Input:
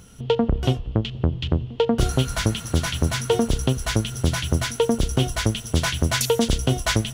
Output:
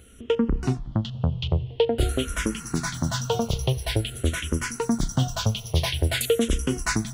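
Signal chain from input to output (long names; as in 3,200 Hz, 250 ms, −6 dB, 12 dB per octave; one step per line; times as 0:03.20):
frequency shifter mixed with the dry sound −0.48 Hz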